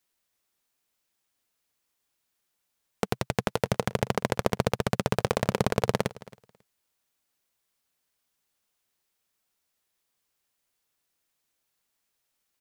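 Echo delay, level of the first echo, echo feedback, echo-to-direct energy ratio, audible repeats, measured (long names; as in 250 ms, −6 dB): 272 ms, −20.5 dB, repeats not evenly spaced, −20.5 dB, 1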